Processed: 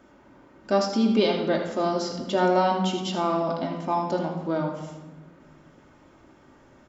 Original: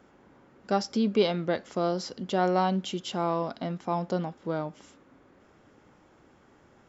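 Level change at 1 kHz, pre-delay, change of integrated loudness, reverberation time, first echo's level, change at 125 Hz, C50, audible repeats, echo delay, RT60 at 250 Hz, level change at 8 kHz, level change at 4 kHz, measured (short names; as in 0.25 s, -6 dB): +4.0 dB, 3 ms, +4.0 dB, 1.2 s, -9.5 dB, +1.5 dB, 5.0 dB, 1, 79 ms, 1.9 s, n/a, +4.0 dB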